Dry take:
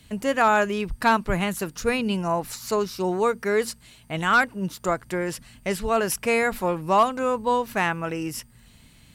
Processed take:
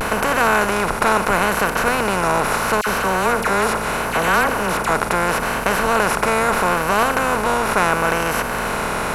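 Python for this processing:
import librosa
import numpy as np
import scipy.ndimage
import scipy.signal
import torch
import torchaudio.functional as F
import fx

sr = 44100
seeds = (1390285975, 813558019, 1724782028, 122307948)

y = fx.bin_compress(x, sr, power=0.2)
y = fx.vibrato(y, sr, rate_hz=0.75, depth_cents=60.0)
y = fx.dispersion(y, sr, late='lows', ms=58.0, hz=1500.0, at=(2.81, 4.89))
y = y * 10.0 ** (-4.5 / 20.0)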